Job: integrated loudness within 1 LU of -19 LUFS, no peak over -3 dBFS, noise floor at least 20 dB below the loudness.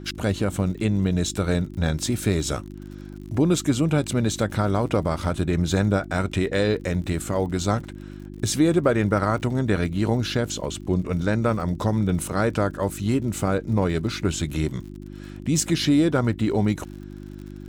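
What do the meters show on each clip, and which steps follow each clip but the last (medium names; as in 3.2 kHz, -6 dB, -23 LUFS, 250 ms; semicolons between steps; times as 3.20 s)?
tick rate 50 per s; hum 50 Hz; highest harmonic 350 Hz; hum level -36 dBFS; loudness -23.5 LUFS; peak level -7.5 dBFS; loudness target -19.0 LUFS
-> de-click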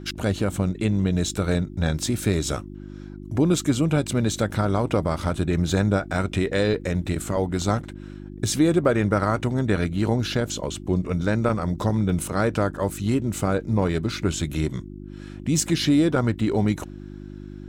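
tick rate 0.45 per s; hum 50 Hz; highest harmonic 350 Hz; hum level -36 dBFS
-> de-hum 50 Hz, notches 7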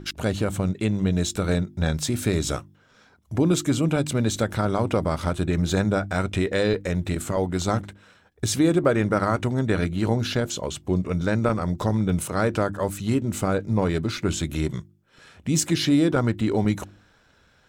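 hum not found; loudness -24.0 LUFS; peak level -8.5 dBFS; loudness target -19.0 LUFS
-> trim +5 dB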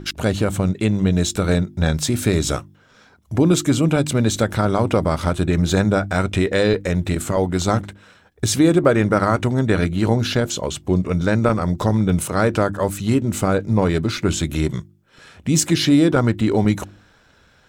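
loudness -19.0 LUFS; peak level -3.5 dBFS; noise floor -54 dBFS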